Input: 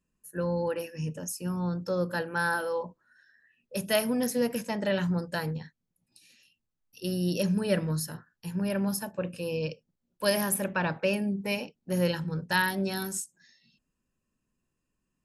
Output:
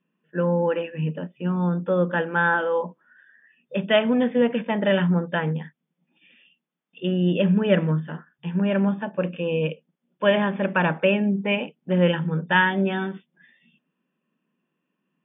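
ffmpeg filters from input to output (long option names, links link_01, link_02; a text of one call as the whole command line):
ffmpeg -i in.wav -af "afftfilt=real='re*between(b*sr/4096,140,3600)':imag='im*between(b*sr/4096,140,3600)':win_size=4096:overlap=0.75,volume=7.5dB" out.wav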